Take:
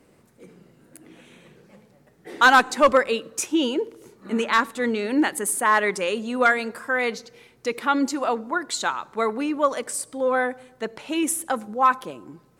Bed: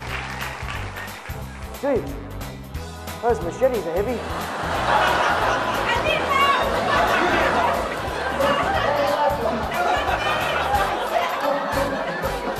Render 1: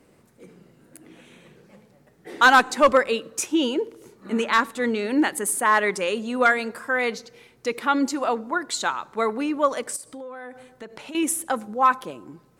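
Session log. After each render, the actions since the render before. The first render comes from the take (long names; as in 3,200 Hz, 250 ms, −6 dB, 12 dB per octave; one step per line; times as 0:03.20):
0:09.96–0:11.15: downward compressor 12 to 1, threshold −34 dBFS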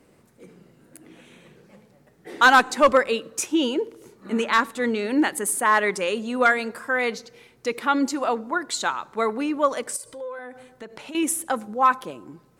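0:09.95–0:10.39: comb filter 2 ms, depth 70%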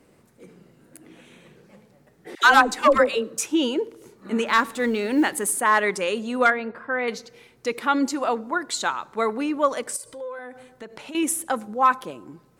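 0:02.35–0:03.46: all-pass dispersion lows, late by 84 ms, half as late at 700 Hz
0:04.46–0:05.52: mu-law and A-law mismatch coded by mu
0:06.50–0:07.08: high-frequency loss of the air 400 metres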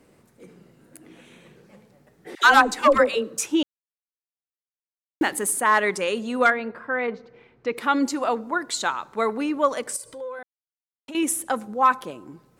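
0:03.63–0:05.21: silence
0:07.06–0:07.76: low-pass filter 1,300 Hz → 2,800 Hz
0:10.43–0:11.08: silence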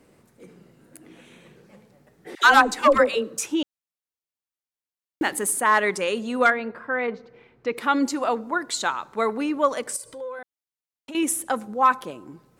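0:03.33–0:05.25: downward compressor 1.5 to 1, threshold −24 dBFS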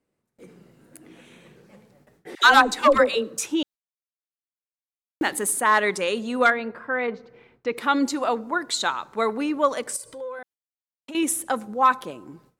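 noise gate with hold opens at −46 dBFS
dynamic equaliser 3,800 Hz, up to +6 dB, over −47 dBFS, Q 5.2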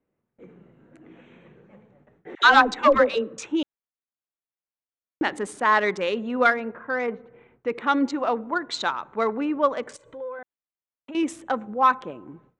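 adaptive Wiener filter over 9 samples
Bessel low-pass filter 4,700 Hz, order 6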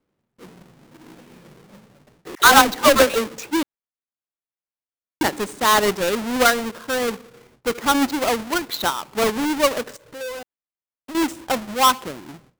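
each half-wave held at its own peak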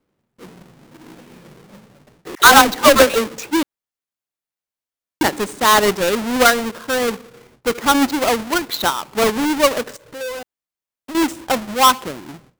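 level +3.5 dB
brickwall limiter −1 dBFS, peak gain reduction 1.5 dB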